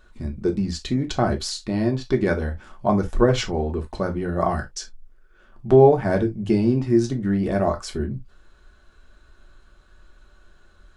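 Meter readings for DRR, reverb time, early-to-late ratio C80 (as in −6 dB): 2.5 dB, non-exponential decay, 35.5 dB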